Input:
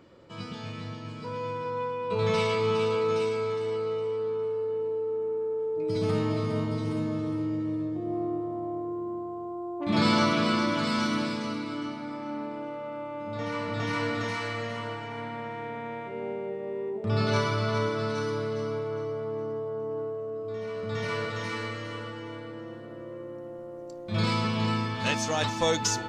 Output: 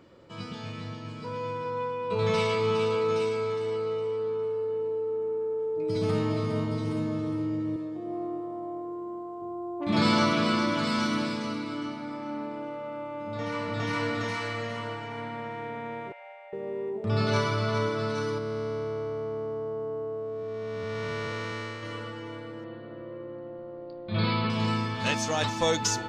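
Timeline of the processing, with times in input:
7.76–9.42 s: high-pass 360 Hz 6 dB/octave
16.12–16.53 s: rippled Chebyshev high-pass 540 Hz, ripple 9 dB
18.38–21.83 s: spectral blur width 416 ms
22.64–24.50 s: steep low-pass 4.7 kHz 96 dB/octave

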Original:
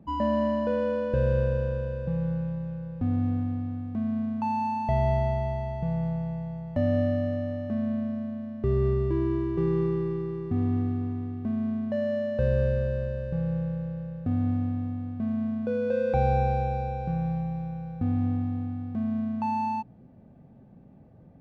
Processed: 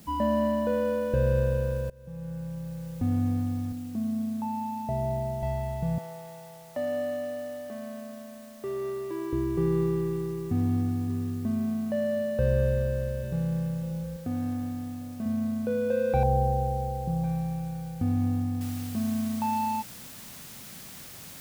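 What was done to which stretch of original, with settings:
1.90–3.00 s: fade in, from -23.5 dB
3.72–5.43 s: band-pass filter 310 Hz, Q 0.7
5.98–9.33 s: high-pass 460 Hz
9.95–11.02 s: echo throw 570 ms, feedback 50%, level -14 dB
12.64–13.44 s: echo throw 590 ms, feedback 50%, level -10.5 dB
14.16–15.26 s: high-pass 230 Hz 6 dB/octave
16.23–17.24 s: low-pass 1 kHz 24 dB/octave
18.61 s: noise floor step -56 dB -45 dB

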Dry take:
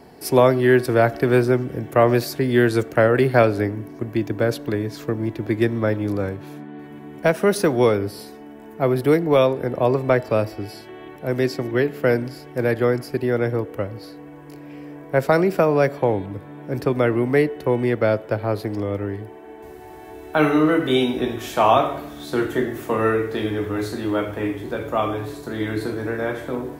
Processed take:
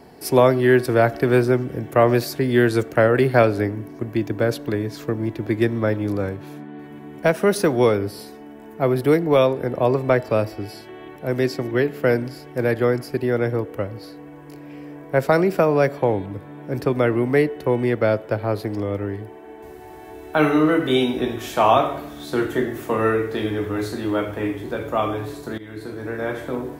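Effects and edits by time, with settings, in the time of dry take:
25.58–26.37 s: fade in, from -17 dB

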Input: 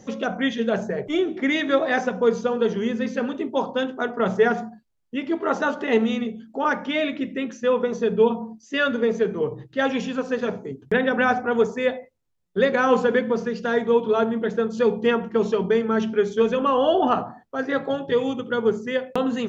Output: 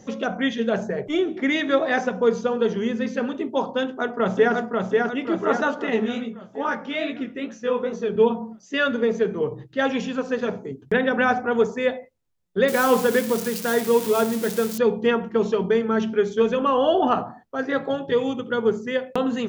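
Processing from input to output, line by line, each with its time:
3.83–4.55 s: echo throw 540 ms, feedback 55%, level -2.5 dB
5.90–8.16 s: chorus 2.4 Hz, delay 17 ms, depth 7.9 ms
12.68–14.78 s: zero-crossing glitches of -19 dBFS

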